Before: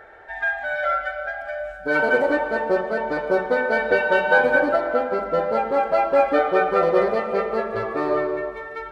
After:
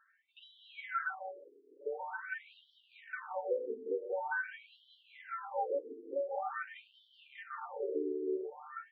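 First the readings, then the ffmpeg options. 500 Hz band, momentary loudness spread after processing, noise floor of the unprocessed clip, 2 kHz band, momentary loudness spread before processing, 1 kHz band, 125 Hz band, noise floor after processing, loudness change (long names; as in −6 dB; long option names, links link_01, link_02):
−19.0 dB, 18 LU, −37 dBFS, −20.0 dB, 10 LU, −18.5 dB, below −40 dB, −70 dBFS, −18.0 dB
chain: -af "afwtdn=0.0355,flanger=delay=9.6:depth=2.8:regen=73:speed=1.3:shape=triangular,aecho=1:1:184|368|552|736|920|1104|1288:0.282|0.169|0.101|0.0609|0.0365|0.0219|0.0131,acompressor=threshold=-29dB:ratio=6,asuperstop=centerf=640:order=20:qfactor=5.2,afftfilt=real='re*between(b*sr/1024,330*pow(4200/330,0.5+0.5*sin(2*PI*0.46*pts/sr))/1.41,330*pow(4200/330,0.5+0.5*sin(2*PI*0.46*pts/sr))*1.41)':imag='im*between(b*sr/1024,330*pow(4200/330,0.5+0.5*sin(2*PI*0.46*pts/sr))/1.41,330*pow(4200/330,0.5+0.5*sin(2*PI*0.46*pts/sr))*1.41)':win_size=1024:overlap=0.75"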